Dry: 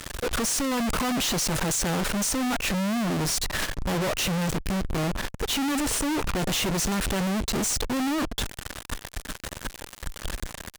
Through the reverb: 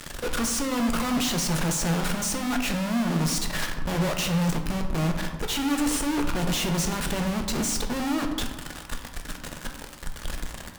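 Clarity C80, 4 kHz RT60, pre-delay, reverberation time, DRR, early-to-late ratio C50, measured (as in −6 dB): 9.0 dB, 0.65 s, 3 ms, 1.3 s, 3.5 dB, 7.0 dB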